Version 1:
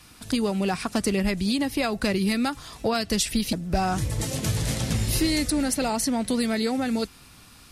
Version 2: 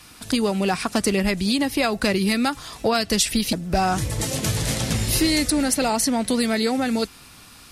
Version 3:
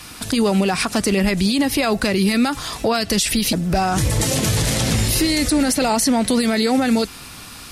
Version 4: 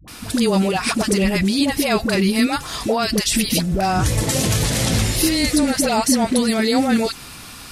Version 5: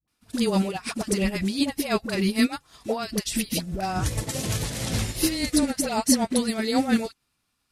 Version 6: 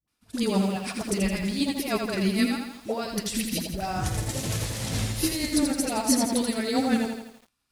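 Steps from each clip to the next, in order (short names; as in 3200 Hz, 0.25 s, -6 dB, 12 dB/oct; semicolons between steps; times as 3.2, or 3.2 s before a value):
low shelf 230 Hz -5 dB; gain +5 dB
limiter -18.5 dBFS, peak gain reduction 11 dB; gain +9 dB
dispersion highs, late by 79 ms, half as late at 530 Hz
upward expander 2.5:1, over -38 dBFS; gain -1.5 dB
lo-fi delay 83 ms, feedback 55%, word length 8-bit, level -5 dB; gain -3 dB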